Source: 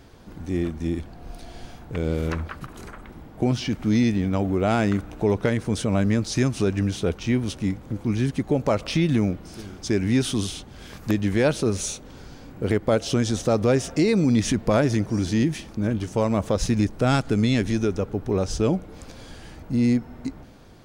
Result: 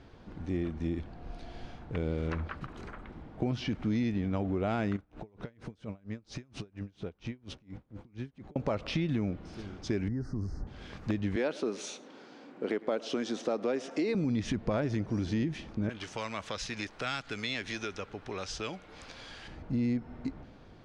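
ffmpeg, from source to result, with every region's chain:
-filter_complex "[0:a]asettb=1/sr,asplit=3[a][b][c];[a]atrim=end=4.964[d];[b]atrim=start=4.96:end=8.56,asetpts=PTS-STARTPTS,afade=t=in:d=0.004:c=qsin,afade=t=out:st=3.596:d=0.004:c=qsin,acompressor=threshold=-27dB:ratio=10:attack=3.2:release=140:knee=1:detection=peak,aeval=exprs='val(0)*pow(10,-29*(0.5-0.5*cos(2*PI*4.3*n/s))/20)':c=same[e];[c]atrim=start=8.556[f];[d][e]acrossfade=d=0.004:c1=hsin:c2=qsin[g];[g][f]acrossfade=d=0.004:c1=qsin:c2=hsin,asettb=1/sr,asplit=3[h][i][j];[h]atrim=end=10.084[k];[i]atrim=start=10.08:end=10.67,asetpts=PTS-STARTPTS,afade=t=in:d=0.004:c=qsin,afade=t=out:st=0.586:d=0.004:c=qsin,acompressor=threshold=-37dB:ratio=2.5:attack=3.2:release=140:knee=1:detection=peak,asuperstop=centerf=3000:order=12:qfactor=1.1,aemphasis=mode=reproduction:type=bsi[l];[j]atrim=start=10.666[m];[k][l]acrossfade=d=0.004:c1=hsin:c2=qsin[n];[n][m]acrossfade=d=0.004:c1=qsin:c2=hsin,asettb=1/sr,asplit=3[o][p][q];[o]atrim=end=11.364[r];[p]atrim=start=11.36:end=14.15,asetpts=PTS-STARTPTS,afade=t=in:d=0.004:c=qsin,afade=t=out:st=2.786:d=0.004:c=qsin,highpass=f=240:w=0.5412,highpass=f=240:w=1.3066,aecho=1:1:107:0.0841,atrim=end_sample=123039[s];[q]atrim=start=14.146[t];[r][s]acrossfade=d=0.004:c1=hsin:c2=qsin[u];[u][t]acrossfade=d=0.004:c1=qsin:c2=hsin,asettb=1/sr,asplit=3[v][w][x];[v]atrim=end=15.894[y];[w]atrim=start=15.89:end=19.48,asetpts=PTS-STARTPTS,afade=t=in:d=0.004:c=qsin,afade=t=out:st=3.586:d=0.004:c=qsin,tiltshelf=f=740:g=-8,acrossover=split=370|1300[z][aa][ab];[z]acompressor=threshold=-39dB:ratio=4[ac];[aa]acompressor=threshold=-37dB:ratio=4[ad];[ab]acompressor=threshold=-26dB:ratio=4[ae];[ac][ad][ae]amix=inputs=3:normalize=0[af];[x]atrim=start=19.476[ag];[y][af]acrossfade=d=0.004:c1=hsin:c2=qsin[ah];[ah][ag]acrossfade=d=0.004:c1=qsin:c2=hsin,lowpass=4k,acompressor=threshold=-24dB:ratio=3,volume=-4.5dB"

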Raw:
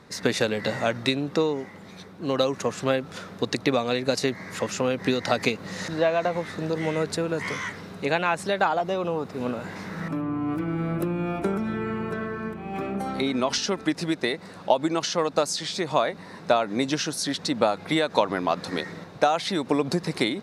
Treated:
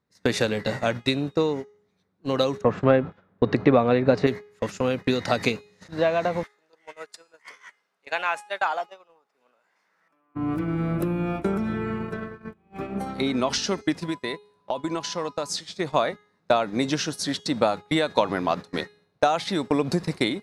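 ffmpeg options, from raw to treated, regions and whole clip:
-filter_complex "[0:a]asettb=1/sr,asplit=3[a][b][c];[a]atrim=end=2.614[d];[b]atrim=start=2.61:end=4.27,asetpts=PTS-STARTPTS,afade=t=in:d=0.004:c=qsin,afade=t=out:st=1.656:d=0.004:c=qsin,lowpass=1.7k,acontrast=40[e];[c]atrim=start=4.266[f];[d][e]acrossfade=d=0.004:c1=hsin:c2=qsin[g];[g][f]acrossfade=d=0.004:c1=qsin:c2=hsin,asettb=1/sr,asplit=3[h][i][j];[h]atrim=end=6.434[k];[i]atrim=start=6.43:end=10.35,asetpts=PTS-STARTPTS,afade=t=in:d=0.004:c=qsin,afade=t=out:st=3.916:d=0.004:c=qsin,highpass=760,bandreject=f=3.9k:w=11[l];[j]atrim=start=10.346[m];[k][l]acrossfade=d=0.004:c1=hsin:c2=qsin[n];[n][m]acrossfade=d=0.004:c1=qsin:c2=hsin,asettb=1/sr,asplit=3[o][p][q];[o]atrim=end=14.024[r];[p]atrim=start=14.02:end=15.49,asetpts=PTS-STARTPTS,afade=t=in:d=0.004:c=qsin,afade=t=out:st=1.466:d=0.004:c=qsin,acompressor=threshold=-25dB:ratio=2.5:attack=3.2:release=140:knee=1:detection=peak,aeval=exprs='val(0)+0.0126*sin(2*PI*1000*n/s)':c=same[s];[q]atrim=start=15.486[t];[r][s]acrossfade=d=0.004:c1=hsin:c2=qsin[u];[u][t]acrossfade=d=0.004:c1=qsin:c2=hsin,agate=range=-29dB:threshold=-29dB:ratio=16:detection=peak,lowshelf=f=88:g=9,bandreject=f=416:t=h:w=4,bandreject=f=832:t=h:w=4,bandreject=f=1.248k:t=h:w=4,bandreject=f=1.664k:t=h:w=4,bandreject=f=2.08k:t=h:w=4,bandreject=f=2.496k:t=h:w=4,bandreject=f=2.912k:t=h:w=4,bandreject=f=3.328k:t=h:w=4,bandreject=f=3.744k:t=h:w=4,bandreject=f=4.16k:t=h:w=4,bandreject=f=4.576k:t=h:w=4,bandreject=f=4.992k:t=h:w=4,bandreject=f=5.408k:t=h:w=4,bandreject=f=5.824k:t=h:w=4,bandreject=f=6.24k:t=h:w=4,bandreject=f=6.656k:t=h:w=4,bandreject=f=7.072k:t=h:w=4,bandreject=f=7.488k:t=h:w=4,bandreject=f=7.904k:t=h:w=4,bandreject=f=8.32k:t=h:w=4,bandreject=f=8.736k:t=h:w=4,bandreject=f=9.152k:t=h:w=4,bandreject=f=9.568k:t=h:w=4,bandreject=f=9.984k:t=h:w=4,bandreject=f=10.4k:t=h:w=4,bandreject=f=10.816k:t=h:w=4,bandreject=f=11.232k:t=h:w=4,bandreject=f=11.648k:t=h:w=4,bandreject=f=12.064k:t=h:w=4,bandreject=f=12.48k:t=h:w=4,bandreject=f=12.896k:t=h:w=4,bandreject=f=13.312k:t=h:w=4,bandreject=f=13.728k:t=h:w=4,bandreject=f=14.144k:t=h:w=4,bandreject=f=14.56k:t=h:w=4"

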